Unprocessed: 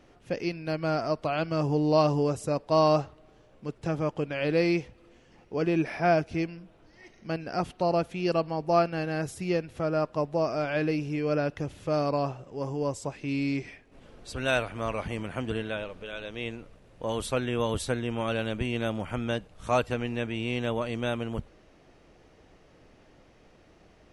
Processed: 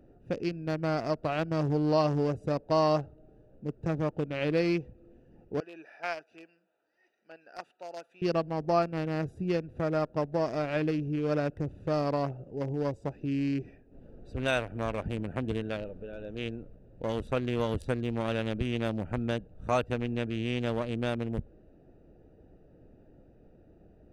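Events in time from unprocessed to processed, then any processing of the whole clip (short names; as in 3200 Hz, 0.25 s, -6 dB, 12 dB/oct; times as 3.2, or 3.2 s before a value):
5.6–8.22 HPF 1300 Hz
whole clip: Wiener smoothing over 41 samples; compressor 1.5:1, threshold -33 dBFS; gain +2.5 dB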